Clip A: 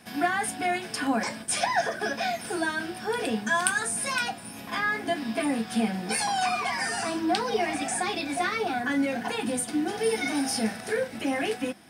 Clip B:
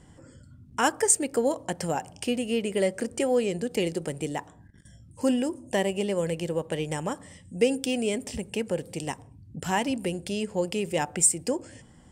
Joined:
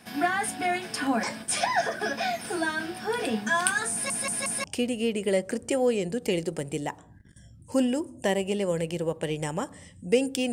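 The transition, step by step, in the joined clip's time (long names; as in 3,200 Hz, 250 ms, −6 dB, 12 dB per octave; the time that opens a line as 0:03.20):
clip A
0:03.92: stutter in place 0.18 s, 4 plays
0:04.64: continue with clip B from 0:02.13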